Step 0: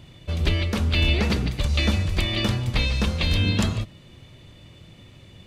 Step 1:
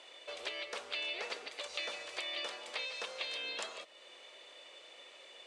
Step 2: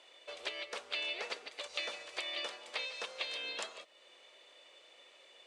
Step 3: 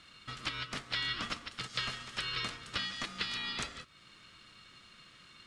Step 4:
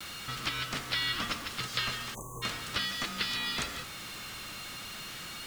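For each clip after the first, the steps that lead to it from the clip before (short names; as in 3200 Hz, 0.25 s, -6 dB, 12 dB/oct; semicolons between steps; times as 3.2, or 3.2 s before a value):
elliptic band-pass 500–9000 Hz, stop band 50 dB; compressor 2:1, threshold -47 dBFS, peak gain reduction 13 dB
upward expander 1.5:1, over -50 dBFS; gain +2 dB
ring modulator 710 Hz; gain +6 dB
zero-crossing step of -40 dBFS; spectral delete 2.14–2.42, 1200–6000 Hz; vibrato 0.4 Hz 25 cents; gain +2 dB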